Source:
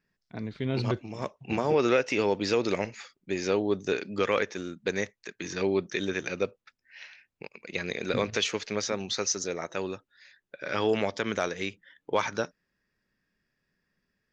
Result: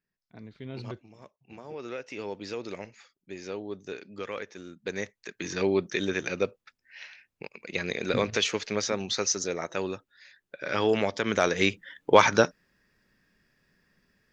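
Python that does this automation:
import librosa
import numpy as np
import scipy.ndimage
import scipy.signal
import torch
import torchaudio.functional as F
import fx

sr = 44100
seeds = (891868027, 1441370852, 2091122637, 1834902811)

y = fx.gain(x, sr, db=fx.line((0.91, -10.0), (1.37, -20.0), (2.29, -10.0), (4.43, -10.0), (5.4, 1.5), (11.22, 1.5), (11.65, 9.5)))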